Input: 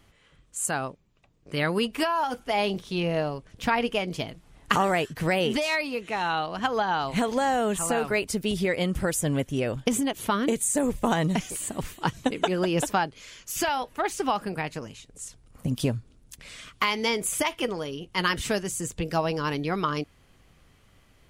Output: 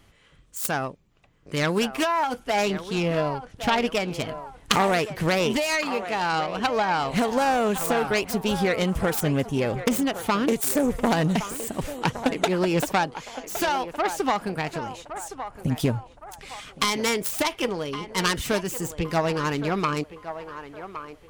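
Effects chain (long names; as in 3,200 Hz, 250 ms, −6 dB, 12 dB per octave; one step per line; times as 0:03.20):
phase distortion by the signal itself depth 0.35 ms
feedback echo with a band-pass in the loop 1,115 ms, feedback 46%, band-pass 890 Hz, level −9.5 dB
level +2.5 dB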